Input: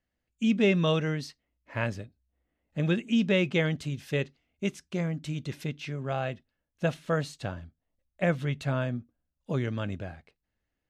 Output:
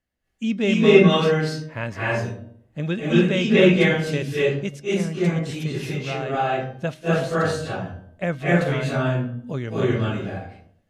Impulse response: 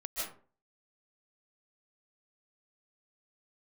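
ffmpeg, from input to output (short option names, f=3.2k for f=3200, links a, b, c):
-filter_complex "[0:a]bandreject=f=311.9:t=h:w=4,bandreject=f=623.8:t=h:w=4,bandreject=f=935.7:t=h:w=4,bandreject=f=1.2476k:t=h:w=4,bandreject=f=1.5595k:t=h:w=4,bandreject=f=1.8714k:t=h:w=4,bandreject=f=2.1833k:t=h:w=4,bandreject=f=2.4952k:t=h:w=4,bandreject=f=2.8071k:t=h:w=4,bandreject=f=3.119k:t=h:w=4,bandreject=f=3.4309k:t=h:w=4,bandreject=f=3.7428k:t=h:w=4,bandreject=f=4.0547k:t=h:w=4,bandreject=f=4.3666k:t=h:w=4,bandreject=f=4.6785k:t=h:w=4,bandreject=f=4.9904k:t=h:w=4,bandreject=f=5.3023k:t=h:w=4,bandreject=f=5.6142k:t=h:w=4,bandreject=f=5.9261k:t=h:w=4[a];[1:a]atrim=start_sample=2205,asetrate=26460,aresample=44100[b];[a][b]afir=irnorm=-1:irlink=0,volume=3dB"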